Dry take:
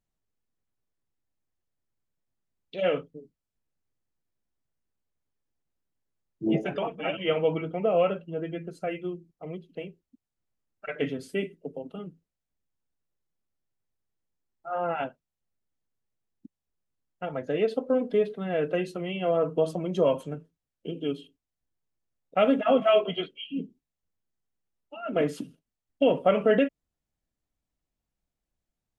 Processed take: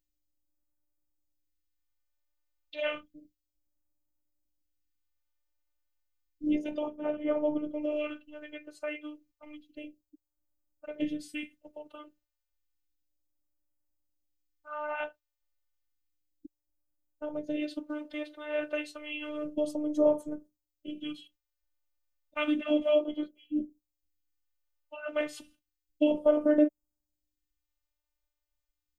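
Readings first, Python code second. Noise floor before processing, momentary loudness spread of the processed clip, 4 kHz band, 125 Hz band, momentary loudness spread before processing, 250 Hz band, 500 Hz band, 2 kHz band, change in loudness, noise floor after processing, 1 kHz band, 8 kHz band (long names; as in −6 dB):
below −85 dBFS, 21 LU, −6.0 dB, −22.0 dB, 18 LU, −1.0 dB, −5.5 dB, −3.5 dB, −4.5 dB, below −85 dBFS, −11.0 dB, can't be measured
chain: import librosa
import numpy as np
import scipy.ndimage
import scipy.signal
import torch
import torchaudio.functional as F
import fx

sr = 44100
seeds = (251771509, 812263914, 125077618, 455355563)

y = fx.phaser_stages(x, sr, stages=2, low_hz=190.0, high_hz=2700.0, hz=0.31, feedback_pct=25)
y = fx.robotise(y, sr, hz=301.0)
y = y * 10.0 ** (1.5 / 20.0)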